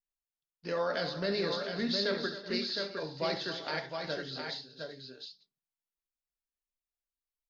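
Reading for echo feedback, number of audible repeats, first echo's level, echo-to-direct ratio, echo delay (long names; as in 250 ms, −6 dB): repeats not evenly spaced, 4, −13.5 dB, −4.0 dB, 67 ms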